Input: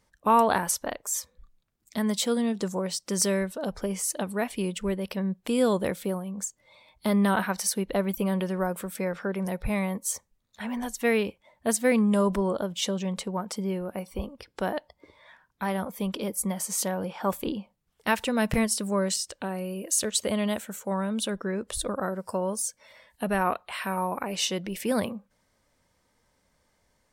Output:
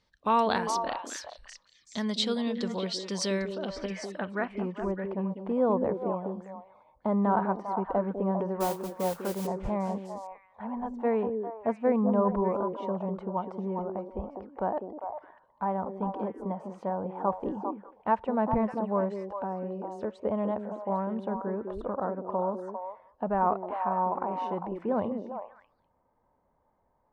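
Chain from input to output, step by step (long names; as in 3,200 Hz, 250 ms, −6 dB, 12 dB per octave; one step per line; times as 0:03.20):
low-pass filter sweep 4,200 Hz → 910 Hz, 0:03.33–0:04.94
0:08.60–0:09.47: noise that follows the level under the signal 12 dB
echo through a band-pass that steps 200 ms, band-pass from 320 Hz, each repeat 1.4 octaves, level −2 dB
level −4.5 dB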